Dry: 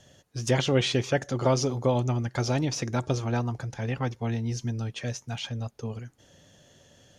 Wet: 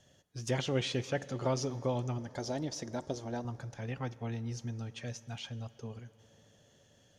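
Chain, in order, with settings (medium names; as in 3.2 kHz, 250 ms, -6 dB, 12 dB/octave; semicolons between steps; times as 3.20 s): 2.18–3.45 s: graphic EQ with 31 bands 125 Hz -10 dB, 630 Hz +4 dB, 1.25 kHz -11 dB, 2.5 kHz -11 dB; reverberation RT60 4.9 s, pre-delay 3 ms, DRR 17 dB; trim -8.5 dB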